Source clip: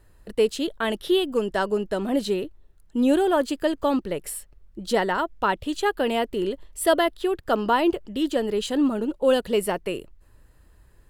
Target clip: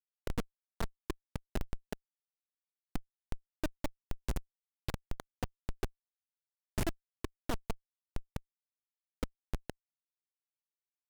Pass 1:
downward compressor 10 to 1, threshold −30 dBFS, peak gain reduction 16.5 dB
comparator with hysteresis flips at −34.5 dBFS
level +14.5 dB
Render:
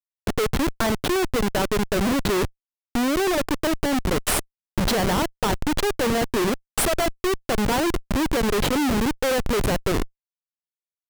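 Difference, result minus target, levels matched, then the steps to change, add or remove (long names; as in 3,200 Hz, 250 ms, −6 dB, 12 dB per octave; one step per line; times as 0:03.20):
downward compressor: peak gain reduction −10 dB
change: downward compressor 10 to 1, threshold −41 dBFS, peak gain reduction 26 dB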